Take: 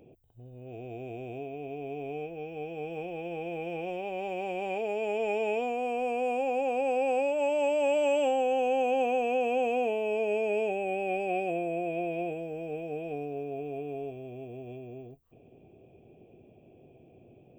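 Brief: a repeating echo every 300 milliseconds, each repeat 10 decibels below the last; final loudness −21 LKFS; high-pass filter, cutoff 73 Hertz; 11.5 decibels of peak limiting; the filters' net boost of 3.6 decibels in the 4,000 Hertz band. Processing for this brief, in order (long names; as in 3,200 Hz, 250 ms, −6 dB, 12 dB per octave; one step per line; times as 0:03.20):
high-pass filter 73 Hz
parametric band 4,000 Hz +6 dB
brickwall limiter −30 dBFS
repeating echo 300 ms, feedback 32%, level −10 dB
level +16.5 dB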